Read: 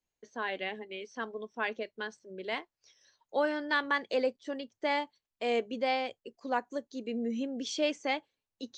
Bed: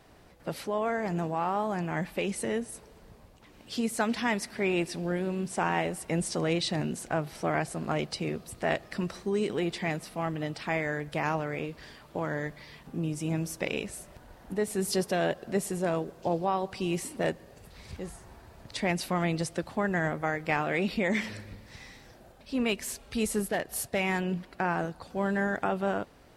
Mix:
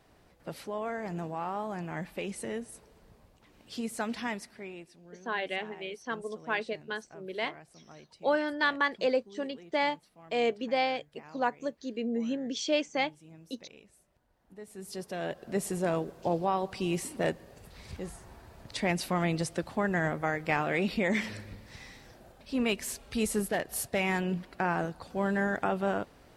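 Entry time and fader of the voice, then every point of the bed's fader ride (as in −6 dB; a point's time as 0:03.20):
4.90 s, +2.0 dB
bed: 0:04.26 −5.5 dB
0:04.96 −22 dB
0:14.29 −22 dB
0:15.68 −0.5 dB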